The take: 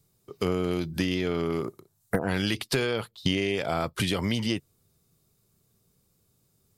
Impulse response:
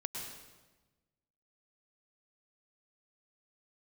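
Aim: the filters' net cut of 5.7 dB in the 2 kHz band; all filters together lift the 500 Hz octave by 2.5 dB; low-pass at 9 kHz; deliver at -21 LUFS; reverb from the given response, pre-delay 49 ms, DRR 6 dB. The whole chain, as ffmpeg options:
-filter_complex "[0:a]lowpass=9000,equalizer=f=500:t=o:g=3.5,equalizer=f=2000:t=o:g=-7.5,asplit=2[s0][s1];[1:a]atrim=start_sample=2205,adelay=49[s2];[s1][s2]afir=irnorm=-1:irlink=0,volume=0.473[s3];[s0][s3]amix=inputs=2:normalize=0,volume=2.11"

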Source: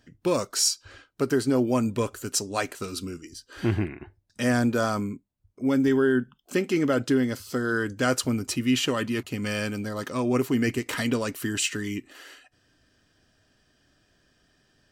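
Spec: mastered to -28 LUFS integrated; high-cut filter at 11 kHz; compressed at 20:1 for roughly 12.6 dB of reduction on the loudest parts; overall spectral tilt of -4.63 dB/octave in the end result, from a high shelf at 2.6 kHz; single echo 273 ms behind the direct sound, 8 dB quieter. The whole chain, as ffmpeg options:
-af "lowpass=11000,highshelf=f=2600:g=-5,acompressor=threshold=0.0282:ratio=20,aecho=1:1:273:0.398,volume=2.51"

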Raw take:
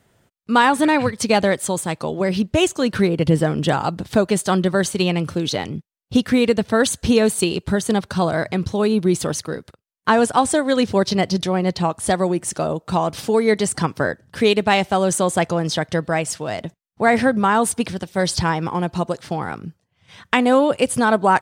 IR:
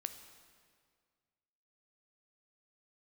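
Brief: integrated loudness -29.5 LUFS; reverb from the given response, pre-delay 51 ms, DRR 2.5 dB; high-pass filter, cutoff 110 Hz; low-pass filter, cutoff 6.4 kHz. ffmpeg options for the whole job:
-filter_complex "[0:a]highpass=110,lowpass=6400,asplit=2[s0][s1];[1:a]atrim=start_sample=2205,adelay=51[s2];[s1][s2]afir=irnorm=-1:irlink=0,volume=0.944[s3];[s0][s3]amix=inputs=2:normalize=0,volume=0.266"

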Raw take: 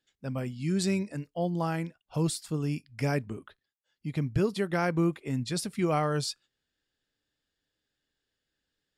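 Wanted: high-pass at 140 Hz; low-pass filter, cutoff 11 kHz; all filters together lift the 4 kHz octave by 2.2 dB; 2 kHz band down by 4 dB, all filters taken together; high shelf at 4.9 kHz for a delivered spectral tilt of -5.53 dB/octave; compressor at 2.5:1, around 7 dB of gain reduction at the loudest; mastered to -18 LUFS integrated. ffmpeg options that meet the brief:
-af "highpass=140,lowpass=11000,equalizer=f=2000:t=o:g=-6,equalizer=f=4000:t=o:g=7.5,highshelf=f=4900:g=-7,acompressor=threshold=0.0224:ratio=2.5,volume=8.91"

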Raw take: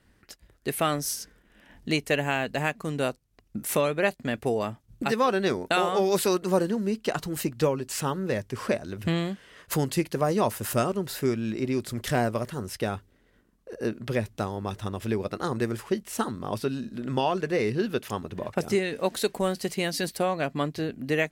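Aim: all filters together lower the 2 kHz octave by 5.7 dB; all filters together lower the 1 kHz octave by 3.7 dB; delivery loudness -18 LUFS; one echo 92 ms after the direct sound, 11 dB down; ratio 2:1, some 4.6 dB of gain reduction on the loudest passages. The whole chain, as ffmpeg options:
-af "equalizer=f=1000:t=o:g=-3.5,equalizer=f=2000:t=o:g=-6.5,acompressor=threshold=0.0398:ratio=2,aecho=1:1:92:0.282,volume=5.01"

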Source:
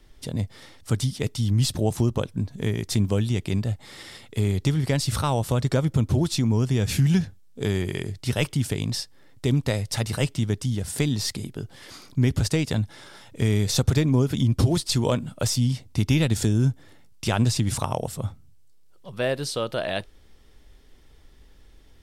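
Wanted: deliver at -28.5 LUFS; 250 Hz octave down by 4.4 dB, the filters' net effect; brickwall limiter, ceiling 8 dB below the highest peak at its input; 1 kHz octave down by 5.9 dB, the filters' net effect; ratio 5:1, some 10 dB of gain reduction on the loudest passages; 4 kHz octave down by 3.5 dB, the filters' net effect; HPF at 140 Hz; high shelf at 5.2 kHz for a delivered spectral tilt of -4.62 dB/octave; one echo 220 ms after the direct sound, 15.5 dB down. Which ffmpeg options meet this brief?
-af "highpass=140,equalizer=f=250:t=o:g=-4.5,equalizer=f=1000:t=o:g=-7.5,equalizer=f=4000:t=o:g=-6,highshelf=f=5200:g=3.5,acompressor=threshold=0.0251:ratio=5,alimiter=level_in=1.41:limit=0.0631:level=0:latency=1,volume=0.708,aecho=1:1:220:0.168,volume=3.16"

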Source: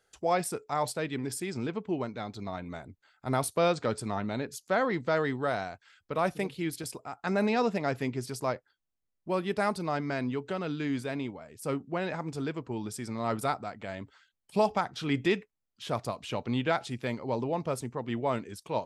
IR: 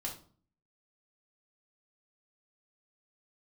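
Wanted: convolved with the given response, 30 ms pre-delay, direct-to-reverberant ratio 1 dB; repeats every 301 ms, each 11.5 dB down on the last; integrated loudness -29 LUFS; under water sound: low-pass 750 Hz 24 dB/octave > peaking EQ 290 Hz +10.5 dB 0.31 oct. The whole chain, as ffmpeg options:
-filter_complex "[0:a]aecho=1:1:301|602|903:0.266|0.0718|0.0194,asplit=2[s0][s1];[1:a]atrim=start_sample=2205,adelay=30[s2];[s1][s2]afir=irnorm=-1:irlink=0,volume=0.841[s3];[s0][s3]amix=inputs=2:normalize=0,lowpass=f=750:w=0.5412,lowpass=f=750:w=1.3066,equalizer=f=290:t=o:w=0.31:g=10.5,volume=0.841"

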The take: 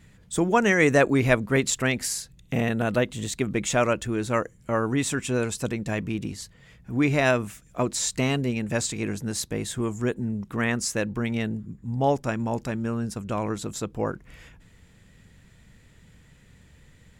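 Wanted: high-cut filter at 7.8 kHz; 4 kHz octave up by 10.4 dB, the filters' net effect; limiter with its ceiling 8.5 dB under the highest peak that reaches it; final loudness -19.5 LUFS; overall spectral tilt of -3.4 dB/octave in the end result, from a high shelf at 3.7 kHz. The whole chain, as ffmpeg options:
-af "lowpass=7800,highshelf=f=3700:g=8,equalizer=f=4000:t=o:g=8,volume=1.78,alimiter=limit=0.501:level=0:latency=1"

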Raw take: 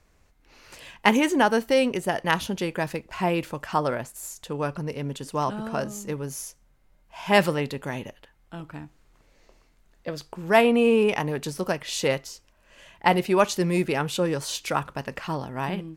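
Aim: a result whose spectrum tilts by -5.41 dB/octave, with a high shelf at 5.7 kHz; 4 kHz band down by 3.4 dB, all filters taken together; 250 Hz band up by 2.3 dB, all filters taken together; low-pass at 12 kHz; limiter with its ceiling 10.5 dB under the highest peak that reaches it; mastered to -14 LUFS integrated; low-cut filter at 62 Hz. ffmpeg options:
-af "highpass=62,lowpass=12000,equalizer=f=250:t=o:g=3,equalizer=f=4000:t=o:g=-3,highshelf=f=5700:g=-5.5,volume=4.22,alimiter=limit=0.891:level=0:latency=1"

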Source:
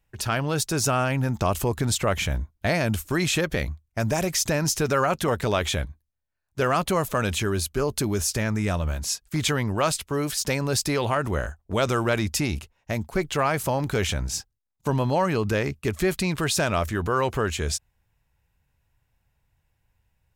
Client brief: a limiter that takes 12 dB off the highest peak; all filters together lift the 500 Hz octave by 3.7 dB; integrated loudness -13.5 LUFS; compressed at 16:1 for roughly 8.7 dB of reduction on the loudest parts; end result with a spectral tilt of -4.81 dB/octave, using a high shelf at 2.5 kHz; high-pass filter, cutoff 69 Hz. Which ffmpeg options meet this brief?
-af "highpass=69,equalizer=f=500:t=o:g=5,highshelf=f=2500:g=-8,acompressor=threshold=0.0562:ratio=16,volume=14.1,alimiter=limit=0.596:level=0:latency=1"

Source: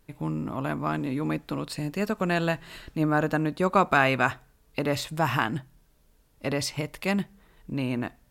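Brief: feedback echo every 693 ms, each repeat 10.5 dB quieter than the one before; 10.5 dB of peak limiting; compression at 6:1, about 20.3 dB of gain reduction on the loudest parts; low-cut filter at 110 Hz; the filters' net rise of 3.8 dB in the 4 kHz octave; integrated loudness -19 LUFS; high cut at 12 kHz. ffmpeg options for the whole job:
-af "highpass=110,lowpass=12000,equalizer=f=4000:t=o:g=5,acompressor=threshold=0.0126:ratio=6,alimiter=level_in=2.24:limit=0.0631:level=0:latency=1,volume=0.447,aecho=1:1:693|1386|2079:0.299|0.0896|0.0269,volume=15.8"

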